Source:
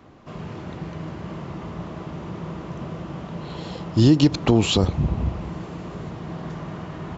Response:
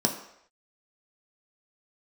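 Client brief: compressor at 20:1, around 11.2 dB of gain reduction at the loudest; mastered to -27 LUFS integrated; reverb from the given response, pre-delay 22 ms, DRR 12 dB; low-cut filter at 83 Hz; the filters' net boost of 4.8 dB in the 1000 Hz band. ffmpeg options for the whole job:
-filter_complex "[0:a]highpass=83,equalizer=f=1k:t=o:g=6,acompressor=threshold=-21dB:ratio=20,asplit=2[a][b];[1:a]atrim=start_sample=2205,adelay=22[c];[b][c]afir=irnorm=-1:irlink=0,volume=-22dB[d];[a][d]amix=inputs=2:normalize=0,volume=3dB"

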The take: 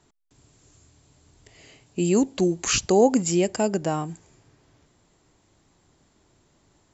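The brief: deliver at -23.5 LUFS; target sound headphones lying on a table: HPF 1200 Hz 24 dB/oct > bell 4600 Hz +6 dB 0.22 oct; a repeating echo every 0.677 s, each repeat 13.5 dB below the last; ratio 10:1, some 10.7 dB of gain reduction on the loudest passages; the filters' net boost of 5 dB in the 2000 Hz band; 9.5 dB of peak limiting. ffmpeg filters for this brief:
-af "equalizer=f=2k:t=o:g=7,acompressor=threshold=-23dB:ratio=10,alimiter=limit=-23dB:level=0:latency=1,highpass=f=1.2k:w=0.5412,highpass=f=1.2k:w=1.3066,equalizer=f=4.6k:t=o:w=0.22:g=6,aecho=1:1:677|1354:0.211|0.0444,volume=15.5dB"

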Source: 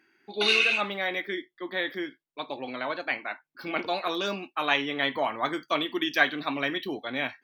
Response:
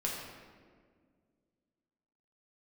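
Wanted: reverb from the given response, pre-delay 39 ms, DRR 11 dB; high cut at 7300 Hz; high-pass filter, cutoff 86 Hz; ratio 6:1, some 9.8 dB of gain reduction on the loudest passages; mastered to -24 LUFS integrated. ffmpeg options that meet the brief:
-filter_complex "[0:a]highpass=86,lowpass=7.3k,acompressor=threshold=-28dB:ratio=6,asplit=2[a][b];[1:a]atrim=start_sample=2205,adelay=39[c];[b][c]afir=irnorm=-1:irlink=0,volume=-15dB[d];[a][d]amix=inputs=2:normalize=0,volume=9dB"

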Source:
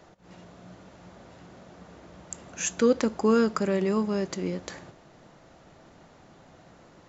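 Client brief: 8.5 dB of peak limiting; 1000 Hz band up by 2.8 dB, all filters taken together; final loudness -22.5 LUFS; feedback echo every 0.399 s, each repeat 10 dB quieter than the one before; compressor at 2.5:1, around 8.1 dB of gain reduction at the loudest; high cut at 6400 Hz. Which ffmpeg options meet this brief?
-af "lowpass=6.4k,equalizer=f=1k:t=o:g=3.5,acompressor=threshold=-28dB:ratio=2.5,alimiter=limit=-23.5dB:level=0:latency=1,aecho=1:1:399|798|1197|1596:0.316|0.101|0.0324|0.0104,volume=12.5dB"

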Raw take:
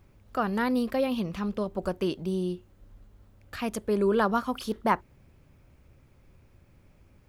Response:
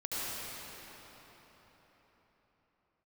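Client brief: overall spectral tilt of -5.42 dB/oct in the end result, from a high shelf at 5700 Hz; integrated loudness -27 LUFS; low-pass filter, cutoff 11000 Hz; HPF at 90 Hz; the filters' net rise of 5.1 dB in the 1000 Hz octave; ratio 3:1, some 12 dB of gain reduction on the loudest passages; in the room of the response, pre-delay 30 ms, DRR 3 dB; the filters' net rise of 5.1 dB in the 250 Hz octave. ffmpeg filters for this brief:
-filter_complex "[0:a]highpass=90,lowpass=11k,equalizer=f=250:t=o:g=6,equalizer=f=1k:t=o:g=5.5,highshelf=f=5.7k:g=8.5,acompressor=threshold=-30dB:ratio=3,asplit=2[a][b];[1:a]atrim=start_sample=2205,adelay=30[c];[b][c]afir=irnorm=-1:irlink=0,volume=-9dB[d];[a][d]amix=inputs=2:normalize=0,volume=5dB"

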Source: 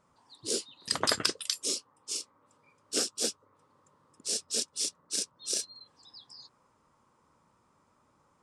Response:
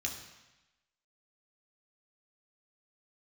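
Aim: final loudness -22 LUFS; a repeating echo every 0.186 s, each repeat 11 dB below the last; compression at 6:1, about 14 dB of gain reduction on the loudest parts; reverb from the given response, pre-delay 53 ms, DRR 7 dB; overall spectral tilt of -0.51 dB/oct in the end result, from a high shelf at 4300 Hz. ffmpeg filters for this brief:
-filter_complex "[0:a]highshelf=f=4.3k:g=-3.5,acompressor=threshold=-41dB:ratio=6,aecho=1:1:186|372|558:0.282|0.0789|0.0221,asplit=2[a][b];[1:a]atrim=start_sample=2205,adelay=53[c];[b][c]afir=irnorm=-1:irlink=0,volume=-9dB[d];[a][d]amix=inputs=2:normalize=0,volume=21.5dB"

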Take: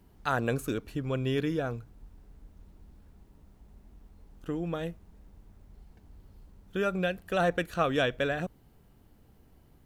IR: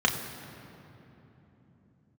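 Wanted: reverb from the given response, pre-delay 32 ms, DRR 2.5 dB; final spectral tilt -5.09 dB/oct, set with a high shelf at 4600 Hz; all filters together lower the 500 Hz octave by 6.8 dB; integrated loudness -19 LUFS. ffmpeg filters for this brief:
-filter_complex "[0:a]equalizer=f=500:t=o:g=-8.5,highshelf=f=4.6k:g=-3.5,asplit=2[a][b];[1:a]atrim=start_sample=2205,adelay=32[c];[b][c]afir=irnorm=-1:irlink=0,volume=-16dB[d];[a][d]amix=inputs=2:normalize=0,volume=13.5dB"

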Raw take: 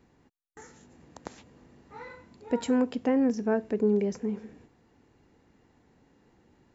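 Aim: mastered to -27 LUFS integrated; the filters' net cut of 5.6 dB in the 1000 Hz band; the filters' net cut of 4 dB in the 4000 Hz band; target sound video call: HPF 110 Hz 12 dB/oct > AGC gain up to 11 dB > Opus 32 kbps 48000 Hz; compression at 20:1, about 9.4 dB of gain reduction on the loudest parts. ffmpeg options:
-af "equalizer=f=1k:t=o:g=-7.5,equalizer=f=4k:t=o:g=-5,acompressor=threshold=-30dB:ratio=20,highpass=110,dynaudnorm=m=11dB,volume=10.5dB" -ar 48000 -c:a libopus -b:a 32k

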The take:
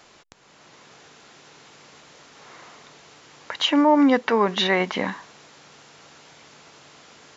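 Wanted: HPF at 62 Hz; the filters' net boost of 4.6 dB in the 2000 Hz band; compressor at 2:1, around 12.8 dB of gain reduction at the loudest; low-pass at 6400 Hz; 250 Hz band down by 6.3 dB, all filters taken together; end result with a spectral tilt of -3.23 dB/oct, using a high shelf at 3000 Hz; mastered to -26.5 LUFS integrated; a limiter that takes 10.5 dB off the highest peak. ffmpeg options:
-af "highpass=62,lowpass=6.4k,equalizer=f=250:t=o:g=-7.5,equalizer=f=2k:t=o:g=6.5,highshelf=f=3k:g=-3.5,acompressor=threshold=-38dB:ratio=2,volume=14.5dB,alimiter=limit=-12dB:level=0:latency=1"

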